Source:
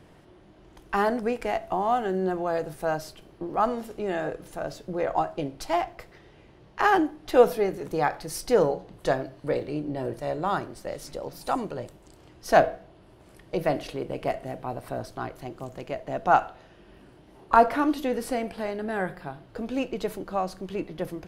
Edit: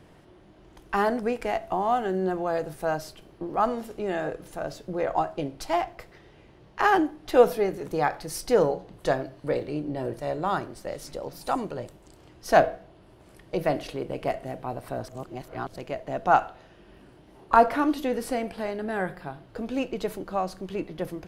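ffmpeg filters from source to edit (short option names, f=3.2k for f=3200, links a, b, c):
-filter_complex "[0:a]asplit=3[a][b][c];[a]atrim=end=15.082[d];[b]atrim=start=15.078:end=15.762,asetpts=PTS-STARTPTS,areverse[e];[c]atrim=start=15.758[f];[d][e]acrossfade=d=0.004:c1=hsin:c2=hsin[g];[g][f]acrossfade=d=0.004:c1=hsin:c2=hsin"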